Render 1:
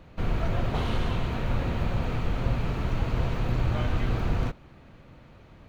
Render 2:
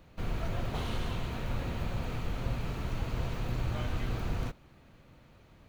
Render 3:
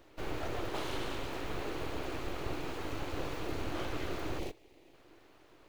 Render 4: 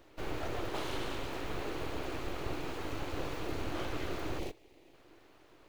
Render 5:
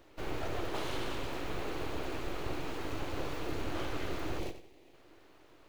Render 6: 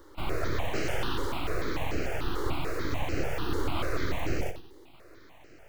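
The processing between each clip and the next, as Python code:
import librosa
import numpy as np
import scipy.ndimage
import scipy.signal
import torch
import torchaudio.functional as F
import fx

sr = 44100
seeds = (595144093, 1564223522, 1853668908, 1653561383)

y1 = fx.high_shelf(x, sr, hz=5500.0, db=11.5)
y1 = F.gain(torch.from_numpy(y1), -7.0).numpy()
y2 = fx.spec_erase(y1, sr, start_s=4.39, length_s=0.55, low_hz=760.0, high_hz=1900.0)
y2 = np.abs(y2)
y2 = fx.low_shelf_res(y2, sr, hz=260.0, db=-6.0, q=3.0)
y2 = F.gain(torch.from_numpy(y2), 1.0).numpy()
y3 = y2
y4 = fx.echo_feedback(y3, sr, ms=90, feedback_pct=29, wet_db=-11.5)
y5 = fx.phaser_held(y4, sr, hz=6.8, low_hz=680.0, high_hz=3500.0)
y5 = F.gain(torch.from_numpy(y5), 9.0).numpy()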